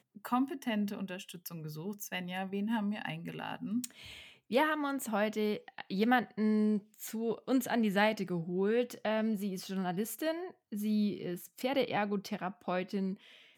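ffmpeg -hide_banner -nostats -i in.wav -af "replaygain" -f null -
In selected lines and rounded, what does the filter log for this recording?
track_gain = +13.9 dB
track_peak = 0.116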